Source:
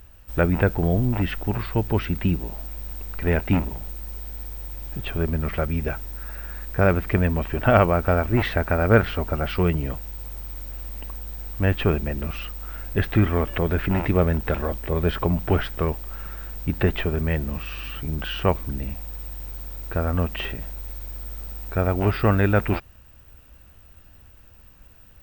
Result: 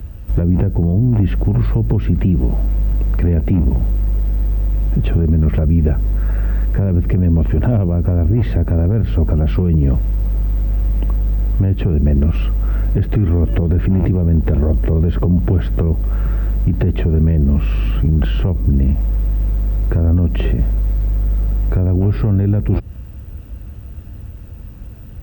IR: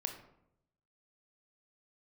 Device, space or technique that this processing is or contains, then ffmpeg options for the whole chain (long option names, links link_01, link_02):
mastering chain: -filter_complex "[0:a]highpass=46,equalizer=frequency=930:width_type=o:width=2.6:gain=-3,acrossover=split=190|610|3000[link_01][link_02][link_03][link_04];[link_01]acompressor=threshold=-23dB:ratio=4[link_05];[link_02]acompressor=threshold=-26dB:ratio=4[link_06];[link_03]acompressor=threshold=-40dB:ratio=4[link_07];[link_04]acompressor=threshold=-45dB:ratio=4[link_08];[link_05][link_06][link_07][link_08]amix=inputs=4:normalize=0,acompressor=threshold=-27dB:ratio=2.5,asoftclip=type=tanh:threshold=-18dB,tiltshelf=frequency=650:gain=9,alimiter=level_in=19.5dB:limit=-1dB:release=50:level=0:latency=1,volume=-6dB"